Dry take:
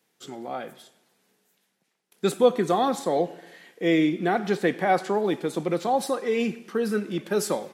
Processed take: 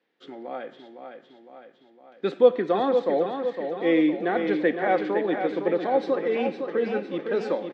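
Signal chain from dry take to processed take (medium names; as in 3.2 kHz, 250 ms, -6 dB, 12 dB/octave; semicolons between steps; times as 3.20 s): cabinet simulation 210–3900 Hz, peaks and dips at 290 Hz +7 dB, 520 Hz +7 dB, 1.8 kHz +5 dB; feedback delay 509 ms, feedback 56%, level -7 dB; trim -4 dB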